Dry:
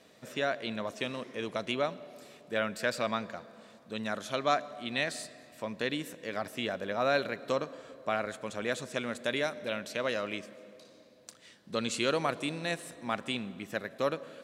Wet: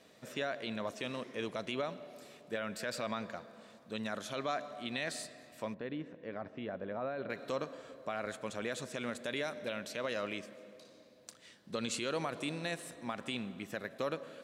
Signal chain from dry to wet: peak limiter -23 dBFS, peak gain reduction 9.5 dB; 5.74–7.30 s: tape spacing loss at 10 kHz 43 dB; trim -2 dB

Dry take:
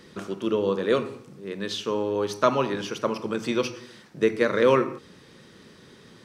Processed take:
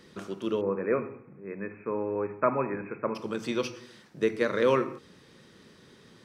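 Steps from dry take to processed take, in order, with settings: 0.61–3.15 s: brick-wall FIR low-pass 2.6 kHz; trim -4.5 dB

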